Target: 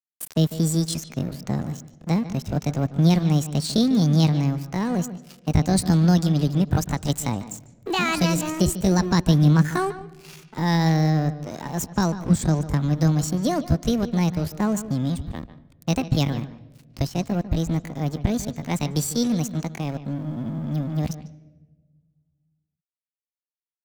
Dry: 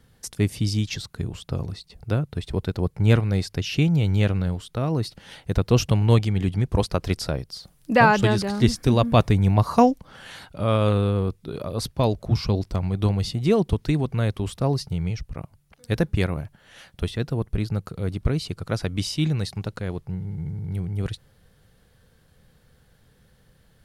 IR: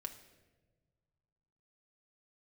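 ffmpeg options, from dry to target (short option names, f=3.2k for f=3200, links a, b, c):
-filter_complex "[0:a]asetrate=68011,aresample=44100,atempo=0.64842,alimiter=limit=-10.5dB:level=0:latency=1,acrossover=split=240|3000[a][b][c];[b]acompressor=threshold=-43dB:ratio=1.5[d];[a][d][c]amix=inputs=3:normalize=0,aeval=exprs='sgn(val(0))*max(abs(val(0))-0.00841,0)':c=same,asplit=2[e][f];[1:a]atrim=start_sample=2205,lowpass=4.4k,adelay=147[g];[f][g]afir=irnorm=-1:irlink=0,volume=-10dB[h];[e][h]amix=inputs=2:normalize=0,volume=4.5dB"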